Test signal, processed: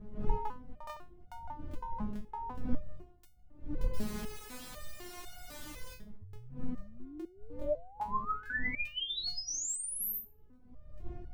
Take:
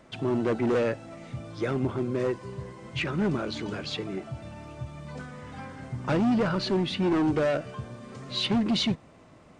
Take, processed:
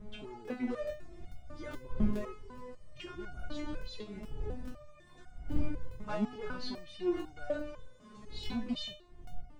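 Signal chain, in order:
wind on the microphone 120 Hz −25 dBFS
regular buffer underruns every 0.42 s, samples 1,024, repeat, from 0:00.43
step-sequenced resonator 4 Hz 210–720 Hz
level +2.5 dB

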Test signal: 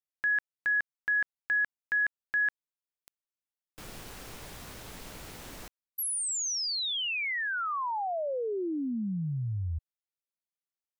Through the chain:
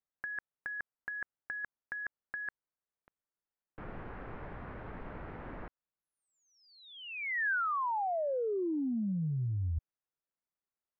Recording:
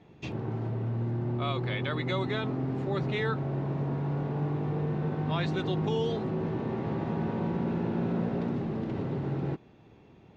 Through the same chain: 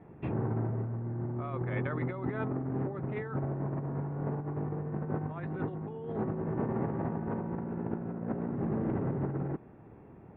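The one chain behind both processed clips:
low-pass filter 1,800 Hz 24 dB per octave
compressor whose output falls as the input rises −33 dBFS, ratio −0.5

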